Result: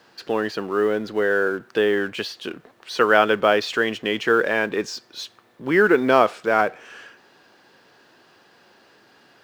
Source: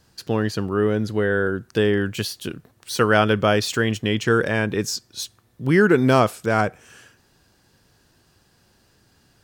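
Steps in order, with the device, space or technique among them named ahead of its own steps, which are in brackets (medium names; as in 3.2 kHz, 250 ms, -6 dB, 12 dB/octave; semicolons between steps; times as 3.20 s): phone line with mismatched companding (band-pass 360–3300 Hz; companding laws mixed up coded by mu); trim +2 dB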